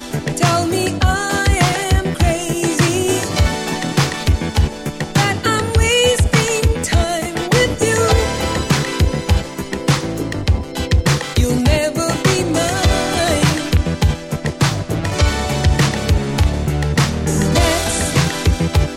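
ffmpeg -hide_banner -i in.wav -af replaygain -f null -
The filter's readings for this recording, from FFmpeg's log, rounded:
track_gain = -1.9 dB
track_peak = 0.615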